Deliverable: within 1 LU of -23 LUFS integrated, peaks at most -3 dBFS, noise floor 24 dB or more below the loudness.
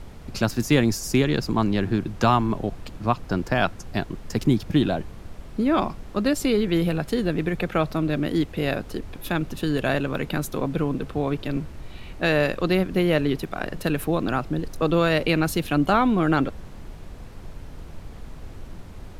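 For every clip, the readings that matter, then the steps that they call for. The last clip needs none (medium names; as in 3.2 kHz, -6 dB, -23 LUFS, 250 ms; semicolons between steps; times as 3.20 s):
noise floor -40 dBFS; noise floor target -48 dBFS; loudness -24.0 LUFS; peak level -5.0 dBFS; loudness target -23.0 LUFS
-> noise print and reduce 8 dB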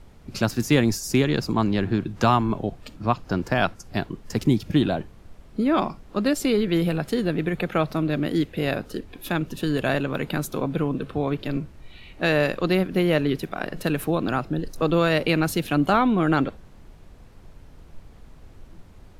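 noise floor -47 dBFS; noise floor target -48 dBFS
-> noise print and reduce 6 dB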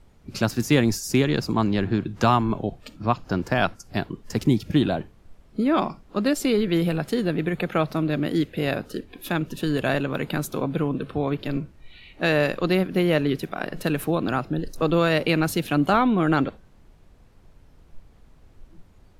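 noise floor -53 dBFS; loudness -24.0 LUFS; peak level -5.0 dBFS; loudness target -23.0 LUFS
-> trim +1 dB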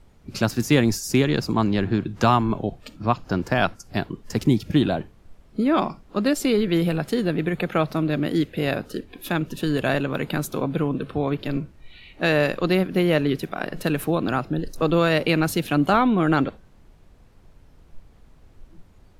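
loudness -23.0 LUFS; peak level -4.0 dBFS; noise floor -52 dBFS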